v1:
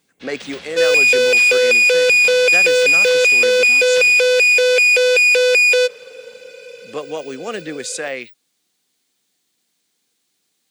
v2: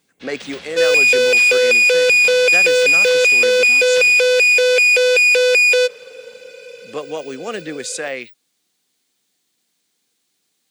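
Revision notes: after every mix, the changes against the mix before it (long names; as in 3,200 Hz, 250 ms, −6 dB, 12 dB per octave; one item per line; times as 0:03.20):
nothing changed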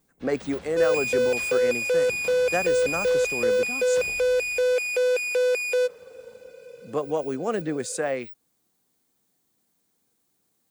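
first sound −4.0 dB
second sound −7.0 dB
master: remove meter weighting curve D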